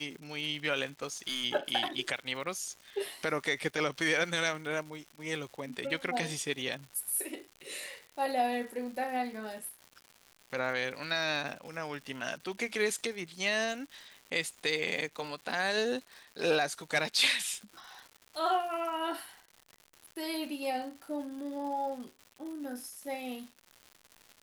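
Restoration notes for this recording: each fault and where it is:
crackle 230 per s -42 dBFS
1.02–1.45 s: clipped -29 dBFS

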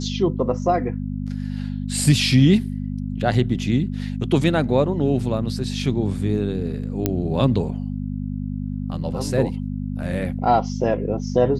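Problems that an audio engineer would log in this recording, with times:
hum 50 Hz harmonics 5 -27 dBFS
7.06 s: pop -6 dBFS

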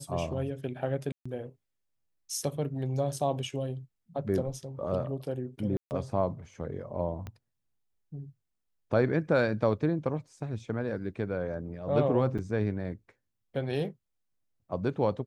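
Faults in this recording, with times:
1.12–1.25 s: dropout 135 ms
5.77–5.91 s: dropout 139 ms
7.27 s: pop -26 dBFS
12.38–12.39 s: dropout 6.2 ms

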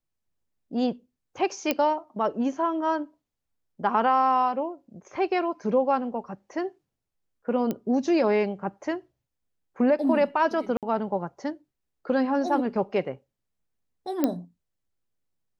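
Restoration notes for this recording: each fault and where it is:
1.71 s: pop -9 dBFS
7.71 s: pop -16 dBFS
10.77–10.83 s: dropout 57 ms
14.24 s: pop -10 dBFS

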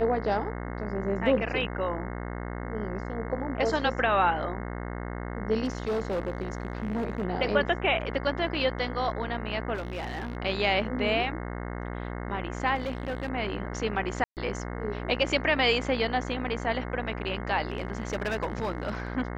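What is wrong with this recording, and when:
buzz 60 Hz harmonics 36 -35 dBFS
5.64–7.25 s: clipped -25 dBFS
9.74–10.37 s: clipped -29.5 dBFS
12.75–13.28 s: clipped -27 dBFS
14.24–14.37 s: dropout 128 ms
17.68–19.07 s: clipped -24.5 dBFS

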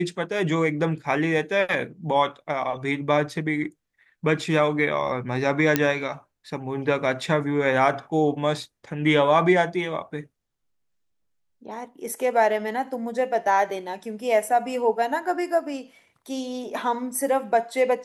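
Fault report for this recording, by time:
5.76 s: pop -4 dBFS

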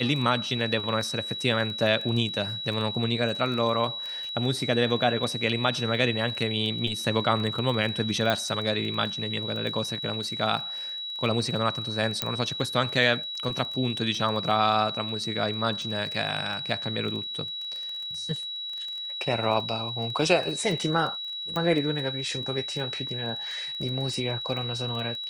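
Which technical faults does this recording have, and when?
crackle 14 per s -32 dBFS
whine 3.9 kHz -32 dBFS
8.30 s: pop -12 dBFS
12.22 s: pop -8 dBFS
21.56 s: pop -17 dBFS

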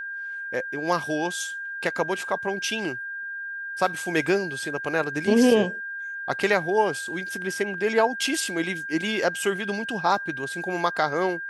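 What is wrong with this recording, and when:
whine 1.6 kHz -31 dBFS

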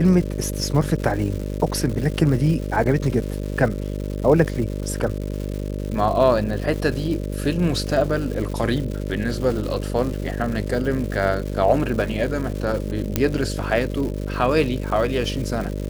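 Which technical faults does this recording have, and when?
buzz 50 Hz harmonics 12 -27 dBFS
crackle 290 per s -29 dBFS
13.16 s: pop -4 dBFS

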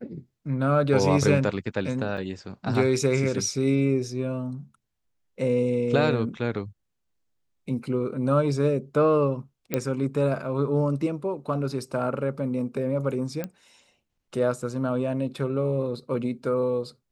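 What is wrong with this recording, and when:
2.17–2.18 s: dropout 6.2 ms
9.74 s: pop -10 dBFS
13.44 s: pop -17 dBFS

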